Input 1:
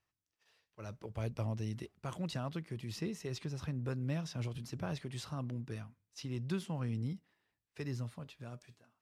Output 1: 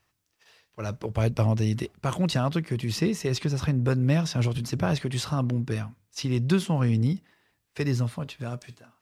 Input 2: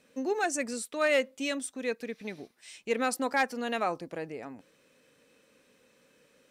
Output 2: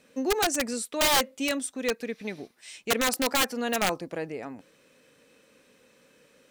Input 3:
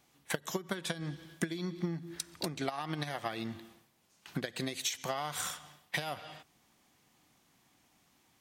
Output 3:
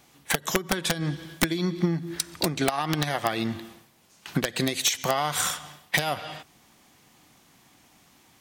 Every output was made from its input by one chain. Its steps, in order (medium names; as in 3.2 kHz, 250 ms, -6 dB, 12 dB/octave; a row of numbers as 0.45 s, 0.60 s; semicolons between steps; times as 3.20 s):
integer overflow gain 21 dB; normalise loudness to -27 LUFS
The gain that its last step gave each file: +14.0 dB, +4.0 dB, +10.5 dB